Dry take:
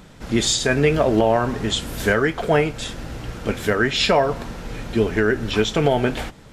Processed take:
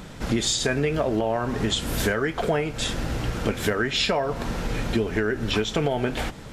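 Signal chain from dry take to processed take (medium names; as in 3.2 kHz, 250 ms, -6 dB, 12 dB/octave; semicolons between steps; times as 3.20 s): compression 6:1, threshold -26 dBFS, peak gain reduction 13 dB; trim +5 dB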